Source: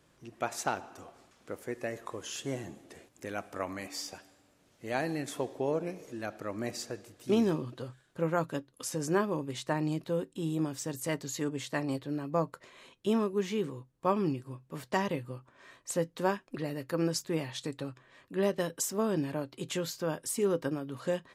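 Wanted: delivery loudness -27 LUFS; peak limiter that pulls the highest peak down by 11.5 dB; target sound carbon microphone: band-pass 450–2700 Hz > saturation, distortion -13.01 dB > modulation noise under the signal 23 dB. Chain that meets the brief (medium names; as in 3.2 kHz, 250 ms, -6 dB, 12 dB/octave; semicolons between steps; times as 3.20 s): peak limiter -25.5 dBFS; band-pass 450–2700 Hz; saturation -35 dBFS; modulation noise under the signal 23 dB; trim +18 dB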